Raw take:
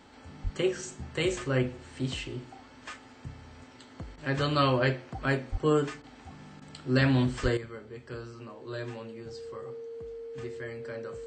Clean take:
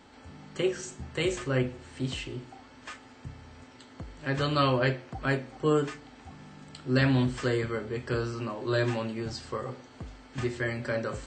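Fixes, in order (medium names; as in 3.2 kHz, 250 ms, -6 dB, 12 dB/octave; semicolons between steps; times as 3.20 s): band-stop 460 Hz, Q 30; 0.43–0.55 s: high-pass 140 Hz 24 dB/octave; 5.51–5.63 s: high-pass 140 Hz 24 dB/octave; 7.42–7.54 s: high-pass 140 Hz 24 dB/octave; interpolate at 4.16/6.02/6.60 s, 15 ms; trim 0 dB, from 7.57 s +10.5 dB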